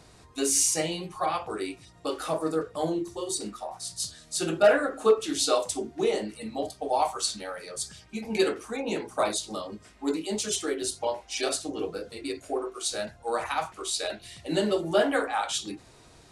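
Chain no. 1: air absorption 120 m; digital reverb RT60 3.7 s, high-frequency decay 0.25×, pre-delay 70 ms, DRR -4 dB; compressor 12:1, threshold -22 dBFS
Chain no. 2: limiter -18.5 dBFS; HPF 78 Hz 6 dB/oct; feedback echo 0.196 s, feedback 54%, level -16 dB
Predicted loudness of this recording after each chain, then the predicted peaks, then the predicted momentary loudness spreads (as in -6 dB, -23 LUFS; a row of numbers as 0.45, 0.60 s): -27.5, -31.0 LUFS; -13.0, -16.5 dBFS; 4, 8 LU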